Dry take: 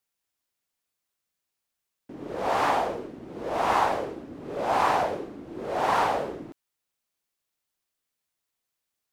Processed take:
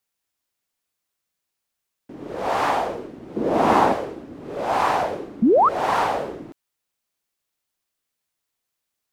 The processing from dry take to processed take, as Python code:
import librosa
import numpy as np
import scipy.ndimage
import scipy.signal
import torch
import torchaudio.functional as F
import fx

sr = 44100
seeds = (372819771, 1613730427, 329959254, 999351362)

y = fx.peak_eq(x, sr, hz=240.0, db=14.0, octaves=2.0, at=(3.36, 3.93))
y = fx.spec_paint(y, sr, seeds[0], shape='rise', start_s=5.42, length_s=0.27, low_hz=200.0, high_hz=1400.0, level_db=-17.0)
y = F.gain(torch.from_numpy(y), 2.5).numpy()